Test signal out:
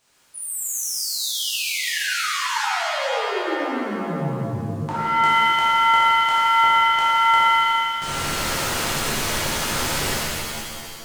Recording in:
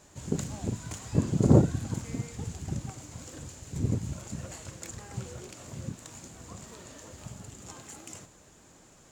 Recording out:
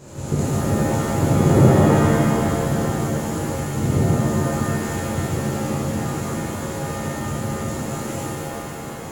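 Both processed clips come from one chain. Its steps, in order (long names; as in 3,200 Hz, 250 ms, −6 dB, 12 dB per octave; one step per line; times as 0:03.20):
compressor on every frequency bin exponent 0.6
reverb with rising layers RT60 1.9 s, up +7 semitones, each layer −2 dB, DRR −9.5 dB
level −5.5 dB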